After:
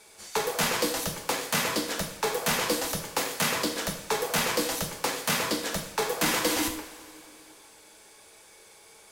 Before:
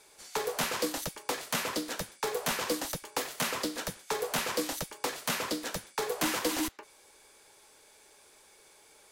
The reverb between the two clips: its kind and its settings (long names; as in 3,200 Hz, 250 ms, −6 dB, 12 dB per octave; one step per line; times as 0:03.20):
coupled-rooms reverb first 0.55 s, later 3.1 s, from −18 dB, DRR 2.5 dB
level +3.5 dB